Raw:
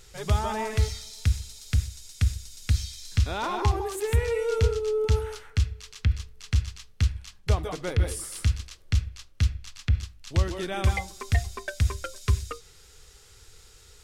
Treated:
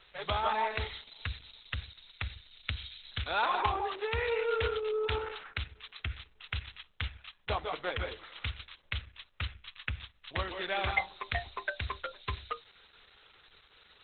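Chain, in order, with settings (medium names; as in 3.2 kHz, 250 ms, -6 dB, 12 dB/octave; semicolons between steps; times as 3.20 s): three-band isolator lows -19 dB, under 560 Hz, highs -17 dB, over 8 kHz; trim +3.5 dB; Opus 8 kbps 48 kHz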